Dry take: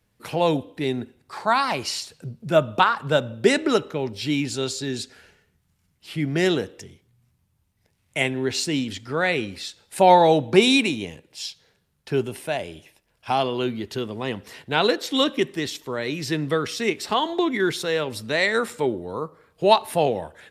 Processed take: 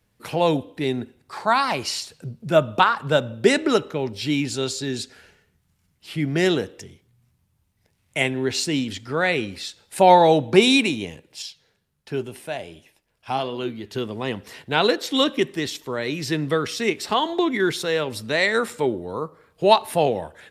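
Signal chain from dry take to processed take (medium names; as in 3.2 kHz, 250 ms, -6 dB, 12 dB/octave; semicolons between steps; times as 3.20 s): 11.42–13.95 s: flange 1.4 Hz, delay 3.6 ms, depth 6.7 ms, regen +81%; trim +1 dB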